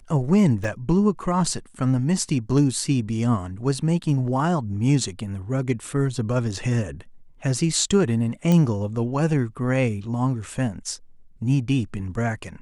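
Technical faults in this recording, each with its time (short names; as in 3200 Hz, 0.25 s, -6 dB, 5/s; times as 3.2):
0.64 gap 3.2 ms
8.52 pop -10 dBFS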